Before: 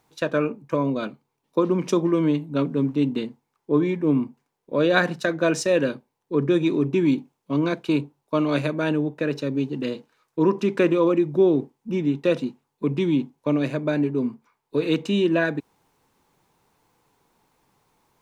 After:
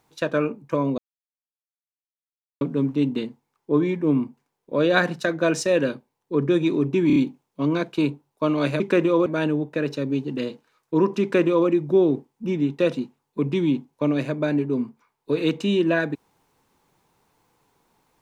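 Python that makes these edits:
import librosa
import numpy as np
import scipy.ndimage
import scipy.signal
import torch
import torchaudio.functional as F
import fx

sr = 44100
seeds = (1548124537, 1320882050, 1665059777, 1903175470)

y = fx.edit(x, sr, fx.silence(start_s=0.98, length_s=1.63),
    fx.stutter(start_s=7.07, slice_s=0.03, count=4),
    fx.duplicate(start_s=10.67, length_s=0.46, to_s=8.71), tone=tone)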